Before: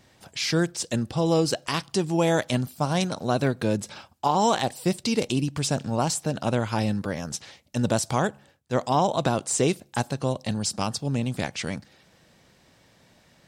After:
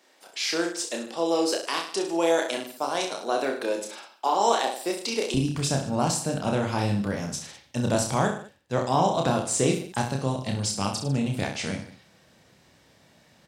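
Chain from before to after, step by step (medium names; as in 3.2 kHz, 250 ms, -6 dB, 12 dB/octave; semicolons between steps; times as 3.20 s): high-pass 320 Hz 24 dB/octave, from 5.34 s 54 Hz; reverse bouncing-ball echo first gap 30 ms, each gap 1.15×, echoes 5; trim -2 dB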